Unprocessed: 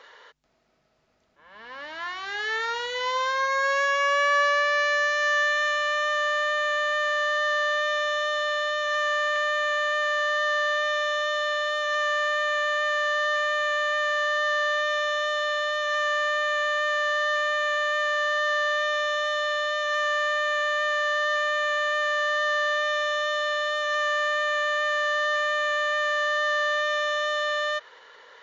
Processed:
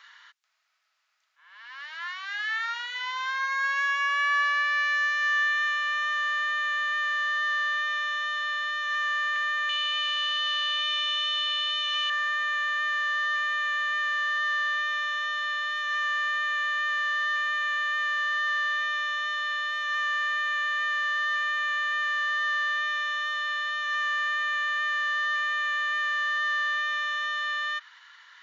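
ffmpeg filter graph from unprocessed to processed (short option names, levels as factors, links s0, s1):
-filter_complex "[0:a]asettb=1/sr,asplit=3[s0][s1][s2];[s0]atrim=end=9.694[s3];[s1]atrim=start=9.69:end=12.1,asetpts=PTS-STARTPTS,afade=t=in:d=0.004:c=qsin,afade=t=out:st=2.406:d=0.004:c=qsin,highshelf=f=2300:t=q:w=3:g=7,aeval=exprs='val(0)+0.00447*(sin(2*PI*60*n/s)+sin(2*PI*2*60*n/s)/2+sin(2*PI*3*60*n/s)/3+sin(2*PI*4*60*n/s)/4+sin(2*PI*5*60*n/s)/5)':c=same[s4];[s2]atrim=start=12.096[s5];[s3][s4]acrossfade=d=0.004:c1=hsin:c2=qsin[s6];[s6][s5]acrossfade=d=0.004:c1=qsin:c2=hsin,acrossover=split=3400[s7][s8];[s8]acompressor=threshold=0.00447:ratio=4:attack=1:release=60[s9];[s7][s9]amix=inputs=2:normalize=0,highpass=f=1200:w=0.5412,highpass=f=1200:w=1.3066"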